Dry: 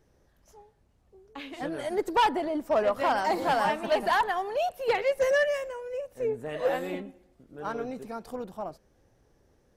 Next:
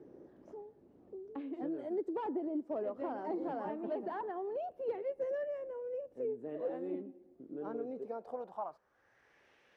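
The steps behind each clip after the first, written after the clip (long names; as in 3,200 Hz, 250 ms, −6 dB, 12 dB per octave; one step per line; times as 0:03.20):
band-pass filter sweep 330 Hz → 2,700 Hz, 0:07.78–0:09.51
multiband upward and downward compressor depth 70%
level −2.5 dB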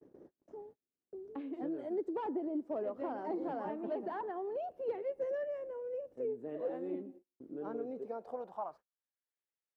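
noise gate −54 dBFS, range −38 dB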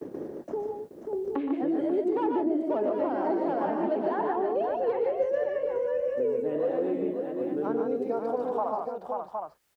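on a send: multi-tap delay 119/147/537/764 ms −7.5/−4.5/−8/−10.5 dB
on the sum: multiband upward and downward compressor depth 70%
level +8.5 dB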